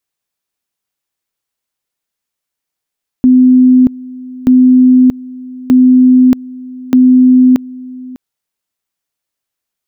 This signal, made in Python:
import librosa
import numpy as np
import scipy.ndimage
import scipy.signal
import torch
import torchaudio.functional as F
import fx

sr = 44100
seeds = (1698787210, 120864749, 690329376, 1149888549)

y = fx.two_level_tone(sr, hz=254.0, level_db=-2.5, drop_db=21.5, high_s=0.63, low_s=0.6, rounds=4)